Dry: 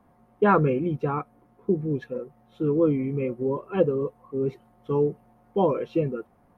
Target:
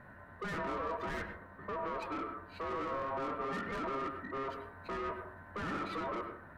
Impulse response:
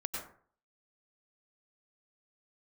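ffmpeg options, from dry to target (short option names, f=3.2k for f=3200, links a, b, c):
-filter_complex "[0:a]equalizer=f=630:t=o:w=0.33:g=11,equalizer=f=1k:t=o:w=0.33:g=11,equalizer=f=3.15k:t=o:w=0.33:g=11,alimiter=limit=-21dB:level=0:latency=1:release=22,asoftclip=type=tanh:threshold=-39dB,aeval=exprs='val(0)*sin(2*PI*810*n/s)':c=same,asplit=2[a][b];[1:a]atrim=start_sample=2205,lowpass=2.5k[c];[b][c]afir=irnorm=-1:irlink=0,volume=-2dB[d];[a][d]amix=inputs=2:normalize=0,volume=1dB"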